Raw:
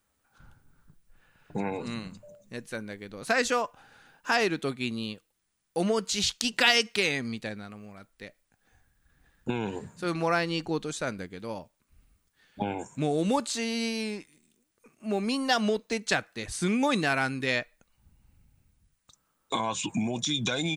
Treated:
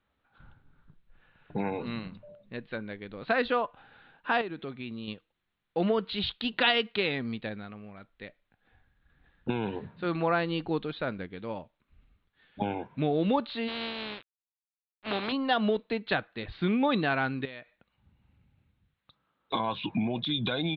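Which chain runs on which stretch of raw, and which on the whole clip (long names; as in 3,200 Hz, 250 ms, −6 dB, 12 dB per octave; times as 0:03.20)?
0:04.41–0:05.08: high-shelf EQ 3,700 Hz −6.5 dB + downward compressor 2.5 to 1, threshold −37 dBFS
0:13.67–0:15.31: compressing power law on the bin magnitudes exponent 0.34 + high-pass filter 100 Hz + centre clipping without the shift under −38 dBFS
0:17.45–0:19.53: high-pass filter 72 Hz + downward compressor 5 to 1, threshold −39 dBFS
whole clip: Butterworth low-pass 4,000 Hz 72 dB per octave; dynamic equaliser 2,200 Hz, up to −5 dB, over −41 dBFS, Q 1.7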